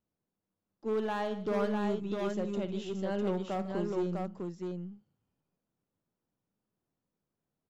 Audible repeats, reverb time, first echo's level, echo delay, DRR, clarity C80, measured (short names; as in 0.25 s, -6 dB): 3, none, -13.0 dB, 55 ms, none, none